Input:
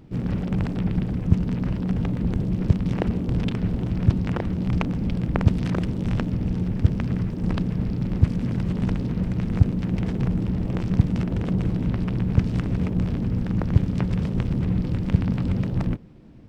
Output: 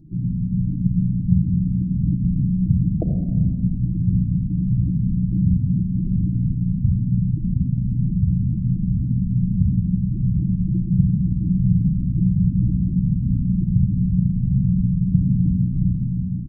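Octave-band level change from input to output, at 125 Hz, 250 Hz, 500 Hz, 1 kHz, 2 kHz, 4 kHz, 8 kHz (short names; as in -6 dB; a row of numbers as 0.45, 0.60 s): +4.5 dB, +3.5 dB, under -10 dB, under -20 dB, under -40 dB, under -40 dB, n/a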